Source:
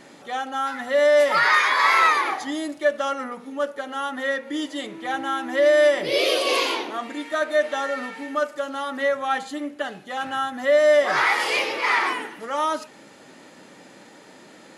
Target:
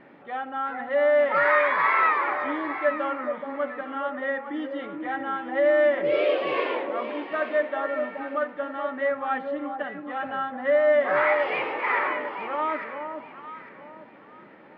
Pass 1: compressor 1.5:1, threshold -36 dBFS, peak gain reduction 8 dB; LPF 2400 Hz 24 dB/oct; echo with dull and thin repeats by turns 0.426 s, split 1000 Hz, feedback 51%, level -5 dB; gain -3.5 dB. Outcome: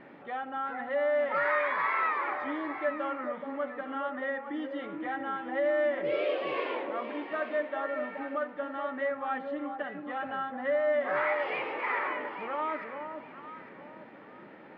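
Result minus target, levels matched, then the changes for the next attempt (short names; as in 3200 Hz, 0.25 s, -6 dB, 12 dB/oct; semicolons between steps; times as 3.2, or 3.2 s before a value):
compressor: peak gain reduction +8 dB
remove: compressor 1.5:1, threshold -36 dBFS, peak gain reduction 8 dB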